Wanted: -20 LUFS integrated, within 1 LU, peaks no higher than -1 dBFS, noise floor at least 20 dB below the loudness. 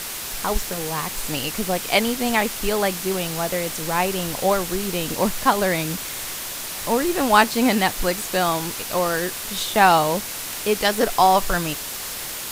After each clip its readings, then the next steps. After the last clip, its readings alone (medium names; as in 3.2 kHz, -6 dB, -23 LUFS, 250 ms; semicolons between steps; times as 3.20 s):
noise floor -31 dBFS; noise floor target -42 dBFS; loudness -21.5 LUFS; peak level -1.5 dBFS; loudness target -20.0 LUFS
-> noise print and reduce 11 dB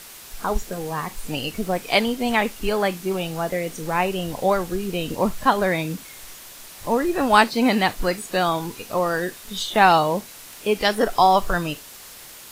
noise floor -42 dBFS; loudness -22.0 LUFS; peak level -1.5 dBFS; loudness target -20.0 LUFS
-> trim +2 dB; peak limiter -1 dBFS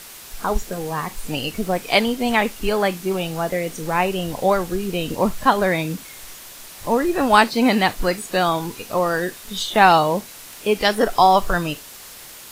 loudness -20.0 LUFS; peak level -1.0 dBFS; noise floor -40 dBFS